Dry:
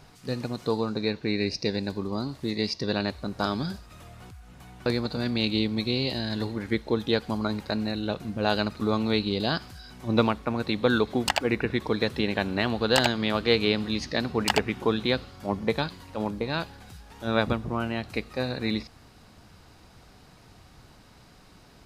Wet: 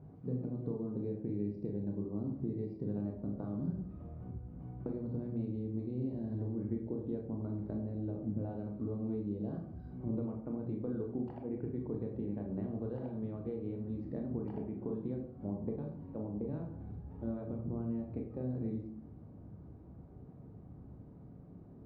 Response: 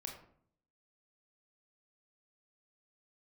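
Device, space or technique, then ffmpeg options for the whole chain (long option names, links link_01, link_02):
television next door: -filter_complex "[0:a]highpass=77,acompressor=threshold=-35dB:ratio=6,lowpass=360[link_01];[1:a]atrim=start_sample=2205[link_02];[link_01][link_02]afir=irnorm=-1:irlink=0,volume=6.5dB"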